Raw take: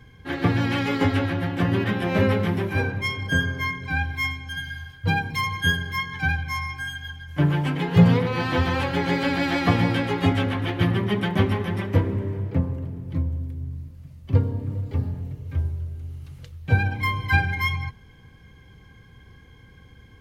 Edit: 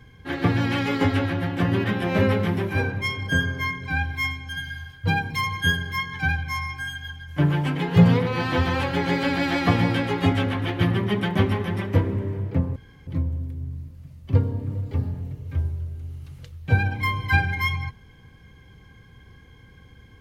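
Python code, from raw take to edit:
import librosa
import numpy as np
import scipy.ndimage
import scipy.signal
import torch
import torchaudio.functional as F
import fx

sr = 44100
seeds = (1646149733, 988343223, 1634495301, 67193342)

y = fx.edit(x, sr, fx.room_tone_fill(start_s=12.76, length_s=0.31), tone=tone)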